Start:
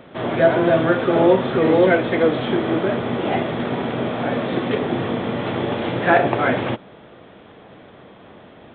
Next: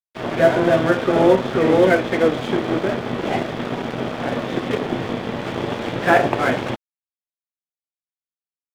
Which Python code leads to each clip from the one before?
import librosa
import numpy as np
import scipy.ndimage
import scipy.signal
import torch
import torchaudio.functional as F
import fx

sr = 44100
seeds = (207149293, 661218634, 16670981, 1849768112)

y = np.sign(x) * np.maximum(np.abs(x) - 10.0 ** (-29.5 / 20.0), 0.0)
y = y * 10.0 ** (1.5 / 20.0)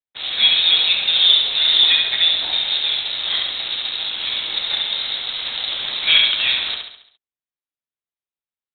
y = fx.echo_feedback(x, sr, ms=69, feedback_pct=49, wet_db=-4.5)
y = fx.freq_invert(y, sr, carrier_hz=4000)
y = y * 10.0 ** (-1.0 / 20.0)